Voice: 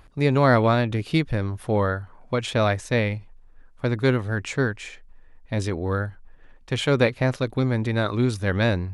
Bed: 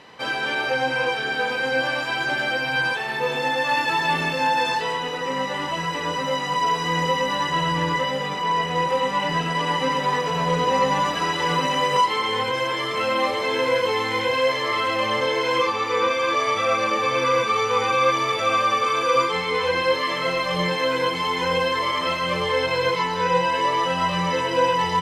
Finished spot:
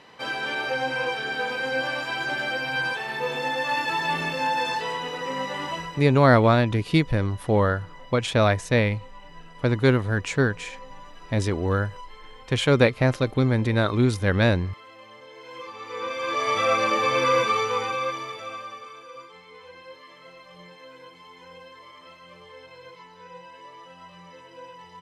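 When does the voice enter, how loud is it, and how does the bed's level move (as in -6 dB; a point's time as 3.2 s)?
5.80 s, +1.5 dB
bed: 5.74 s -4 dB
6.24 s -24.5 dB
15.27 s -24.5 dB
16.58 s -0.5 dB
17.46 s -0.5 dB
19.11 s -24 dB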